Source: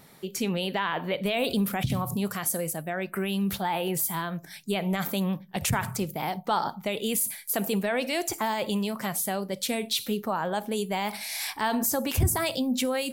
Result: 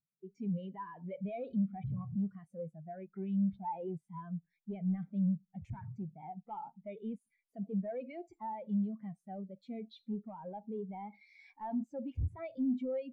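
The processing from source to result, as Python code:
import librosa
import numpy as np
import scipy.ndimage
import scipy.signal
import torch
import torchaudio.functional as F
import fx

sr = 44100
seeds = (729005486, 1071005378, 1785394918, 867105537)

y = fx.low_shelf(x, sr, hz=69.0, db=11.5)
y = fx.notch(y, sr, hz=2700.0, q=16.0)
y = 10.0 ** (-28.0 / 20.0) * np.tanh(y / 10.0 ** (-28.0 / 20.0))
y = scipy.signal.sosfilt(scipy.signal.butter(2, 7000.0, 'lowpass', fs=sr, output='sos'), y)
y = fx.peak_eq(y, sr, hz=2200.0, db=4.5, octaves=0.4)
y = fx.spectral_expand(y, sr, expansion=2.5)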